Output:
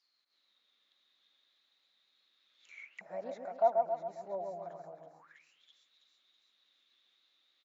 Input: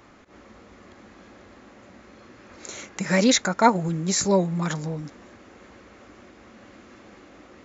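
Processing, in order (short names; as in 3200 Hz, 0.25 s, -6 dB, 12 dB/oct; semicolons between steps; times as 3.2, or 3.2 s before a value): split-band echo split 2000 Hz, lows 0.135 s, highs 0.326 s, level -4 dB; downsampling 22050 Hz; auto-wah 680–4900 Hz, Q 16, down, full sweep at -26 dBFS; gain -1.5 dB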